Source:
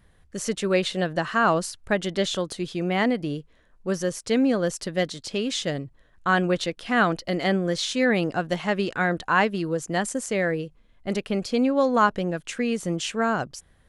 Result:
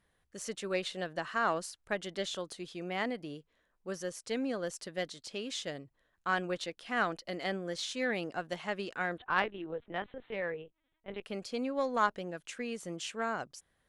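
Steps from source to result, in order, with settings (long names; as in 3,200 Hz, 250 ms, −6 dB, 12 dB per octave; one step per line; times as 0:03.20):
0:09.18–0:11.22: linear-prediction vocoder at 8 kHz pitch kept
low-shelf EQ 210 Hz −11 dB
harmonic generator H 3 −19 dB, 6 −38 dB, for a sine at −6 dBFS
level −6.5 dB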